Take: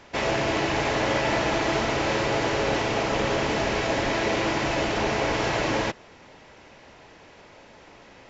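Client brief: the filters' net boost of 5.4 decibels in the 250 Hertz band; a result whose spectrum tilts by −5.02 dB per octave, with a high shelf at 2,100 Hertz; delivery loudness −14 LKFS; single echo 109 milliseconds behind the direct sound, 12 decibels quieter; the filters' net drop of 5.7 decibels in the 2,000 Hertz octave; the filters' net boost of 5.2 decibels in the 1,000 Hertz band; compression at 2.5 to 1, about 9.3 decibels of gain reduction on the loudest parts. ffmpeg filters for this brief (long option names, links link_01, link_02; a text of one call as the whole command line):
ffmpeg -i in.wav -af "equalizer=frequency=250:width_type=o:gain=7,equalizer=frequency=1000:width_type=o:gain=8.5,equalizer=frequency=2000:width_type=o:gain=-7.5,highshelf=frequency=2100:gain=-4.5,acompressor=threshold=-32dB:ratio=2.5,aecho=1:1:109:0.251,volume=17dB" out.wav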